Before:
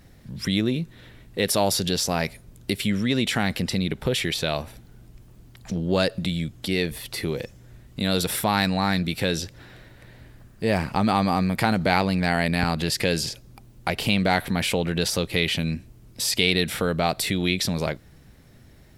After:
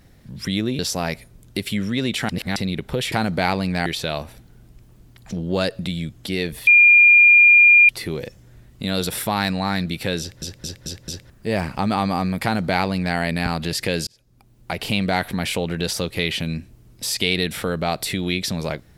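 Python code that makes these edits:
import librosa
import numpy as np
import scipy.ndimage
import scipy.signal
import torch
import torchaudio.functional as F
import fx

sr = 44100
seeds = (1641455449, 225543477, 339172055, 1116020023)

y = fx.edit(x, sr, fx.cut(start_s=0.79, length_s=1.13),
    fx.reverse_span(start_s=3.42, length_s=0.27),
    fx.insert_tone(at_s=7.06, length_s=1.22, hz=2410.0, db=-7.5),
    fx.stutter_over(start_s=9.37, slice_s=0.22, count=5),
    fx.duplicate(start_s=11.6, length_s=0.74, to_s=4.25),
    fx.fade_in_span(start_s=13.24, length_s=0.8), tone=tone)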